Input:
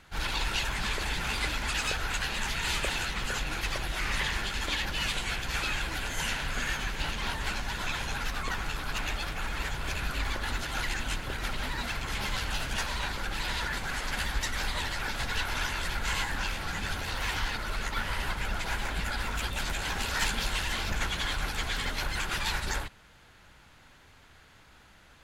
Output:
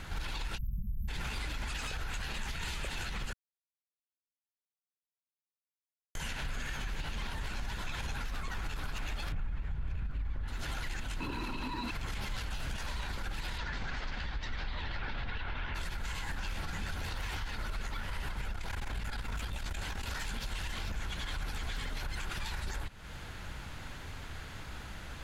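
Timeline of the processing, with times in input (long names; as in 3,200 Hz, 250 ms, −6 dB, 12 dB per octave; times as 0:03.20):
0:00.57–0:01.08: time-frequency box erased 230–12,000 Hz
0:03.33–0:06.15: silence
0:09.32–0:10.48: bass and treble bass +12 dB, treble −15 dB
0:11.20–0:11.91: hollow resonant body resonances 290/970/2,600/4,000 Hz, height 17 dB, ringing for 25 ms
0:13.57–0:15.74: low-pass filter 6,200 Hz → 3,200 Hz 24 dB per octave
0:18.53–0:20.17: saturating transformer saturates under 120 Hz
whole clip: low-shelf EQ 180 Hz +8 dB; downward compressor 6 to 1, threshold −40 dBFS; brickwall limiter −37.5 dBFS; level +9 dB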